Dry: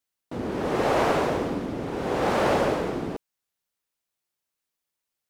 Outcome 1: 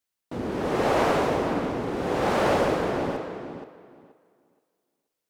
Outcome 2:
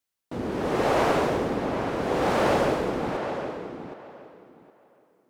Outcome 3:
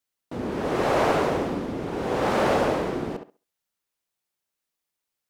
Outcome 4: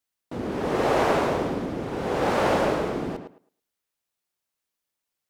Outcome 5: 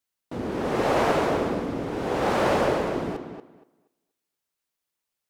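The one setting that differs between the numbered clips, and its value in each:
tape delay, delay time: 476, 768, 69, 110, 237 milliseconds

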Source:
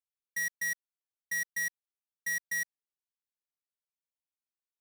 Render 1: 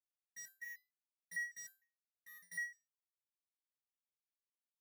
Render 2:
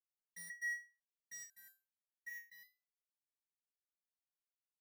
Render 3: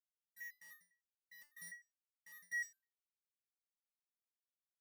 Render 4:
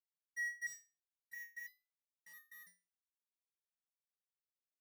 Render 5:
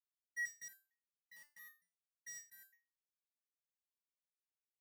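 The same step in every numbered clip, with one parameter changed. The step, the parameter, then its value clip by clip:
step-sequenced resonator, speed: 6.6, 2, 9.9, 3, 4.4 Hertz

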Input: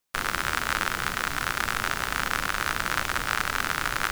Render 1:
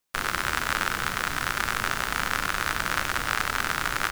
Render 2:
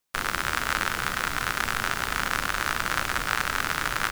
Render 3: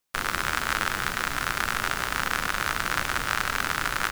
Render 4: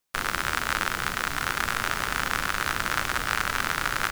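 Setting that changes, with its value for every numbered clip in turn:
repeating echo, delay time: 92, 416, 149, 1,234 milliseconds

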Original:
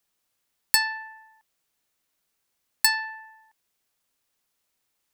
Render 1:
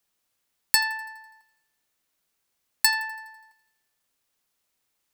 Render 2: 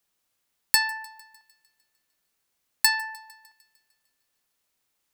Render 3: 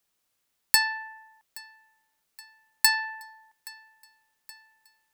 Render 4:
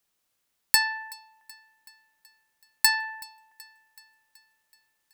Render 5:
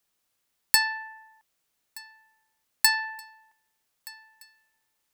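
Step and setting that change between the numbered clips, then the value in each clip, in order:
feedback echo with a high-pass in the loop, delay time: 83, 151, 823, 377, 1,224 milliseconds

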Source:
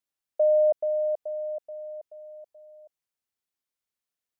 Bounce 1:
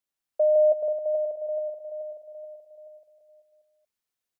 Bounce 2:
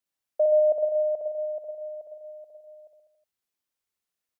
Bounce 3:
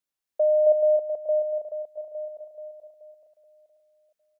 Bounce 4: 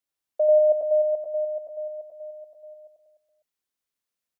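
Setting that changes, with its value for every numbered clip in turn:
reverse bouncing-ball delay, first gap: 160, 60, 270, 90 milliseconds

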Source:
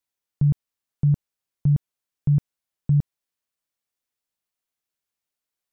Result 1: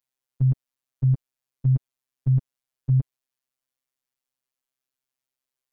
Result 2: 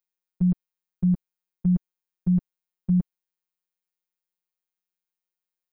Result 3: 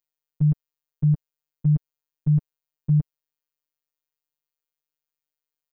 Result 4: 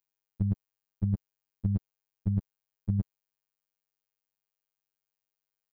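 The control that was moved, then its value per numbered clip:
phases set to zero, frequency: 130, 180, 150, 100 Hertz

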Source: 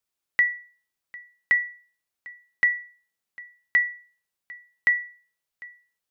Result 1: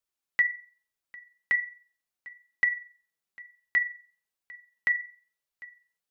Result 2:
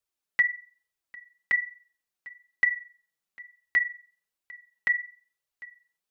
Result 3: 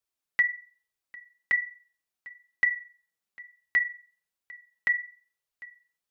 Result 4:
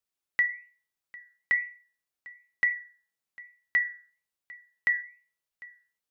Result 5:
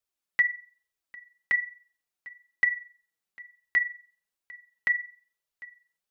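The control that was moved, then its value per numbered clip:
flanger, regen: +56, −1, −25, −84, +22%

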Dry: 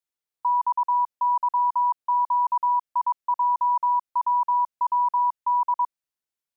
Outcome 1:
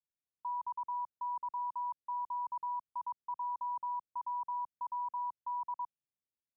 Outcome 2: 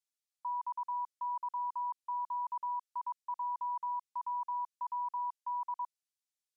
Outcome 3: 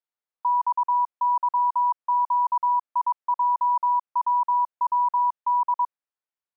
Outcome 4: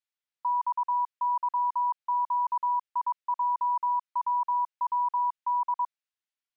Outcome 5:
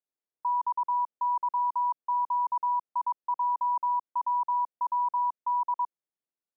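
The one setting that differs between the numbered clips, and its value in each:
resonant band-pass, frequency: 120, 6,600, 960, 2,400, 380 Hertz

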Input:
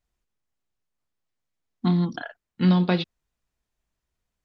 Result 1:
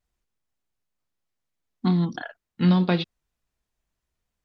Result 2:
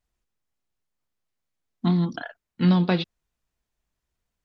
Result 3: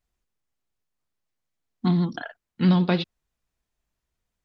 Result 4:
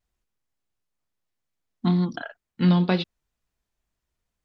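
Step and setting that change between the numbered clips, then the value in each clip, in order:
pitch vibrato, speed: 3.3, 6.3, 14, 2.1 Hertz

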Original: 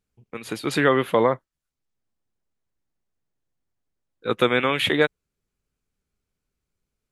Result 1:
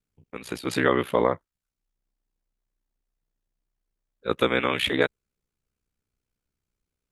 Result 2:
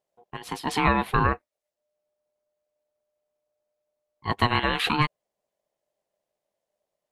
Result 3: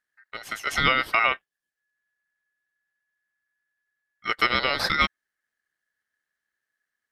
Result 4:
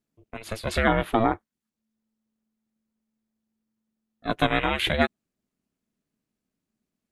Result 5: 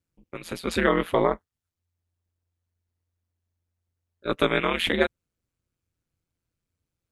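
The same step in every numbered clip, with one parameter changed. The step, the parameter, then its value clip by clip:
ring modulation, frequency: 31, 600, 1,700, 220, 87 Hertz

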